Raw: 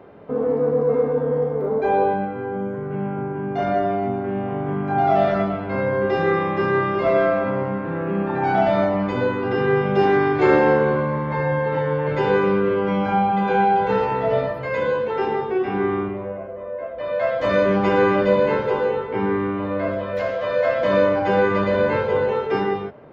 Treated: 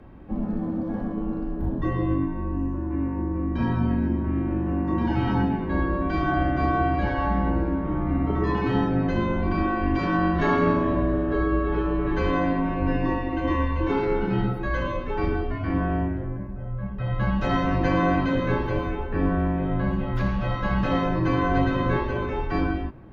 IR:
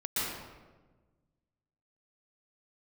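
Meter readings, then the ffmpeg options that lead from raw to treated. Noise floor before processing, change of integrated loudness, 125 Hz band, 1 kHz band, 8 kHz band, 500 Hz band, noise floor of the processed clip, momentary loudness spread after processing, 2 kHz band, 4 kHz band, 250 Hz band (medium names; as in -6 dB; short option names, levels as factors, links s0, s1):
-30 dBFS, -4.5 dB, +2.5 dB, -6.0 dB, no reading, -10.5 dB, -31 dBFS, 6 LU, -5.0 dB, -3.5 dB, +0.5 dB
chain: -af "afreqshift=-470,afftfilt=real='re*lt(hypot(re,im),0.891)':imag='im*lt(hypot(re,im),0.891)':win_size=1024:overlap=0.75"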